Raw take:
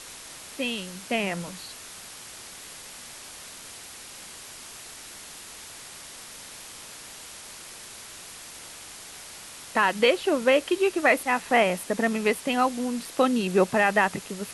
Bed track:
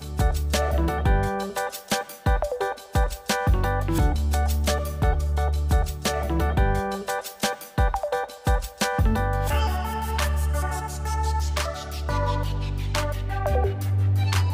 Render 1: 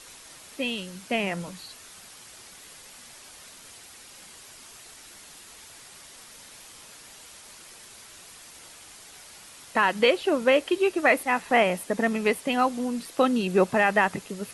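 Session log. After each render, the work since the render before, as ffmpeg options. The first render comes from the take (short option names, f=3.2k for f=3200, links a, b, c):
-af "afftdn=nr=6:nf=-43"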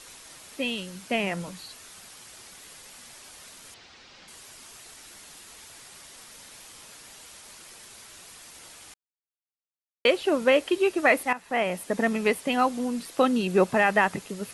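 -filter_complex "[0:a]asettb=1/sr,asplit=3[a][b][c];[a]atrim=end=3.744[d];[b]atrim=start=3.74:end=4.28,asetpts=PTS-STARTPTS,afade=t=in:d=0.004:c=qsin,afade=t=out:st=0.536:d=0.004:c=qsin,lowpass=f=5.2k:w=0.5412,lowpass=f=5.2k:w=1.3066[e];[c]atrim=start=4.276[f];[d][e]acrossfade=d=0.004:c1=hsin:c2=qsin[g];[g][f]acrossfade=d=0.004:c1=qsin:c2=hsin,asplit=4[h][i][j][k];[h]atrim=end=8.94,asetpts=PTS-STARTPTS,afade=t=out:st=8.936:d=0.004:c=hsin[l];[i]atrim=start=8.94:end=10.05,asetpts=PTS-STARTPTS,volume=0[m];[j]atrim=start=10.05:end=11.33,asetpts=PTS-STARTPTS,afade=t=in:d=0.004:c=hsin,afade=t=out:st=1.276:d=0.004:c=hsin:silence=0.199526[n];[k]atrim=start=11.33,asetpts=PTS-STARTPTS,afade=t=in:d=0.62:silence=0.199526[o];[l][m][n][o]concat=n=4:v=0:a=1"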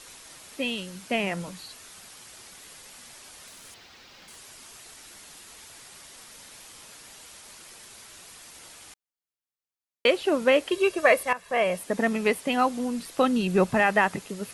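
-filter_complex "[0:a]asettb=1/sr,asplit=3[a][b][c];[a]atrim=end=3.474[d];[b]atrim=start=3.47:end=4.37,asetpts=PTS-STARTPTS,afade=t=in:d=0.004:c=qsin,afade=t=out:st=0.896:d=0.004:c=qsin,acrusher=bits=3:mode=log:mix=0:aa=0.000001[e];[c]atrim=start=4.366[f];[d][e]acrossfade=d=0.004:c1=hsin:c2=qsin[g];[g][f]acrossfade=d=0.004:c1=qsin:c2=hsin,asettb=1/sr,asplit=3[h][i][j];[h]atrim=end=10.714[k];[i]atrim=start=10.71:end=11.79,asetpts=PTS-STARTPTS,afade=t=in:d=0.004:c=qsin,afade=t=out:st=1.076:d=0.004:c=qsin,aecho=1:1:1.8:0.65,atrim=end_sample=47628[l];[j]atrim=start=11.786[m];[k][l]acrossfade=d=0.004:c1=hsin:c2=qsin[n];[n][m]acrossfade=d=0.004:c1=qsin:c2=hsin,asettb=1/sr,asplit=3[o][p][q];[o]atrim=end=12.694[r];[p]atrim=start=12.69:end=13.8,asetpts=PTS-STARTPTS,afade=t=in:d=0.004:c=qsin,afade=t=out:st=1.106:d=0.004:c=qsin,asubboost=boost=6.5:cutoff=190[s];[q]atrim=start=13.796[t];[r][s]acrossfade=d=0.004:c1=hsin:c2=qsin[u];[u][t]acrossfade=d=0.004:c1=qsin:c2=hsin"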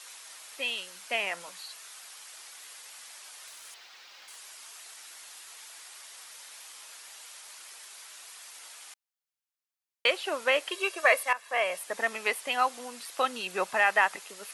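-af "highpass=790"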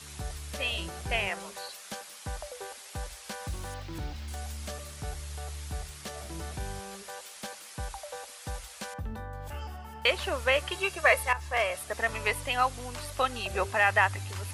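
-filter_complex "[1:a]volume=-16dB[a];[0:a][a]amix=inputs=2:normalize=0"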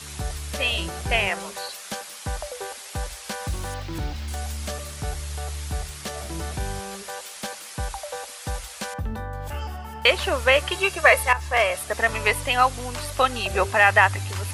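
-af "volume=7.5dB,alimiter=limit=-3dB:level=0:latency=1"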